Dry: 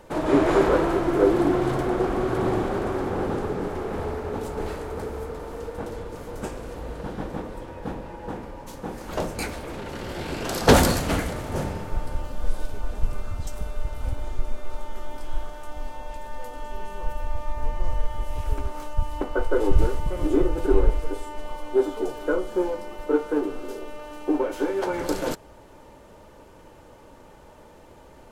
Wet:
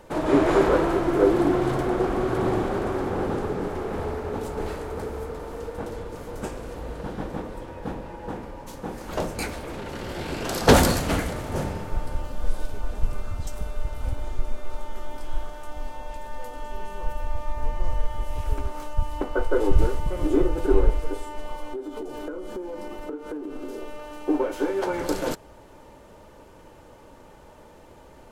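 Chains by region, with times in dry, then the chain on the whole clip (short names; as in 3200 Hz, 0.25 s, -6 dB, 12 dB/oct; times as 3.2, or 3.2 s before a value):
21.73–23.79 bell 280 Hz +7 dB 0.76 oct + compressor 16:1, threshold -29 dBFS
whole clip: dry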